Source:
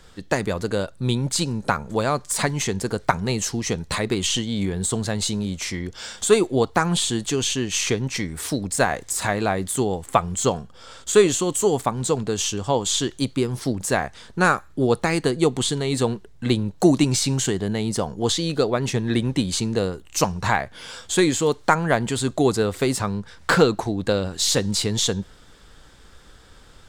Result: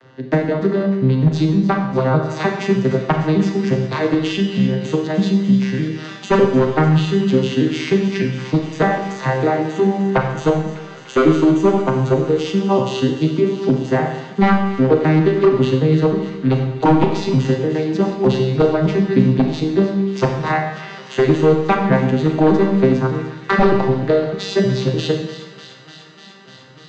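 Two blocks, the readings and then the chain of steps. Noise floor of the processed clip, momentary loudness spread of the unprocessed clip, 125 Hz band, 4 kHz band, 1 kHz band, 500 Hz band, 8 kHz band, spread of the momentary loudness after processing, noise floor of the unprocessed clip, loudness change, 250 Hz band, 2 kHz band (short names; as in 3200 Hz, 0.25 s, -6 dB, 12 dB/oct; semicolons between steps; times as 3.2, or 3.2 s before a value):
-40 dBFS, 7 LU, +8.0 dB, -4.0 dB, +4.0 dB, +6.0 dB, under -15 dB, 6 LU, -47 dBFS, +5.5 dB, +8.0 dB, +1.5 dB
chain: arpeggiated vocoder minor triad, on C3, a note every 0.304 s; HPF 150 Hz 12 dB/oct; high shelf 4800 Hz +7.5 dB; notch 570 Hz, Q 12; in parallel at +0.5 dB: compressor, threshold -29 dBFS, peak gain reduction 17.5 dB; on the sum: wavefolder -12.5 dBFS; air absorption 240 m; on a send: thin delay 0.298 s, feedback 82%, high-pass 2000 Hz, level -12.5 dB; on the sum: Schroeder reverb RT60 0.97 s, combs from 28 ms, DRR 3 dB; gain +6.5 dB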